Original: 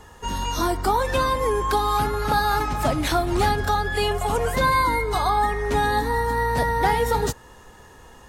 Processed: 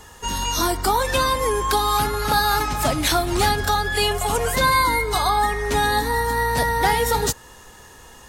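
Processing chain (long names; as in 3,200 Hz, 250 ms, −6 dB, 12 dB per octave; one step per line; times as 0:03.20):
high-shelf EQ 2,400 Hz +9.5 dB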